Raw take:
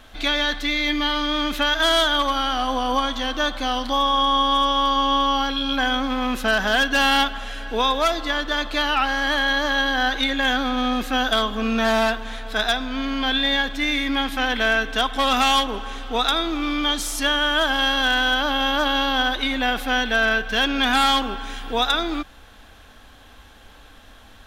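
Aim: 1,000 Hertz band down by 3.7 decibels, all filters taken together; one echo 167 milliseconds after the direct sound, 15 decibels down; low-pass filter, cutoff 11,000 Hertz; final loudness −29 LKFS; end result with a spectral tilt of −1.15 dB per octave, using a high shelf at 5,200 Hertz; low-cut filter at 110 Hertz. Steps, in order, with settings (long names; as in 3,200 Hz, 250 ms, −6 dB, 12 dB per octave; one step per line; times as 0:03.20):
high-pass filter 110 Hz
low-pass filter 11,000 Hz
parametric band 1,000 Hz −5 dB
high-shelf EQ 5,200 Hz +4.5 dB
single-tap delay 167 ms −15 dB
level −8 dB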